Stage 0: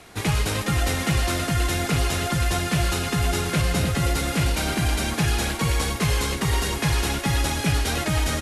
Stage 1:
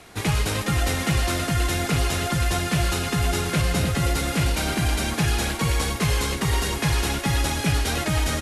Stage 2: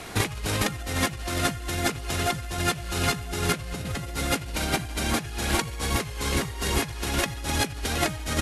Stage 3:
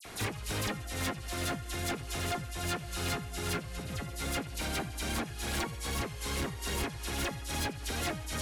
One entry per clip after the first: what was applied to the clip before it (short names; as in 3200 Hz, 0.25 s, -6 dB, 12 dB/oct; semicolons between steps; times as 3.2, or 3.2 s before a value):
nothing audible
negative-ratio compressor -28 dBFS, ratio -0.5; gain +1.5 dB
dispersion lows, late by 52 ms, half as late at 2800 Hz; hard clip -22.5 dBFS, distortion -12 dB; gain -6.5 dB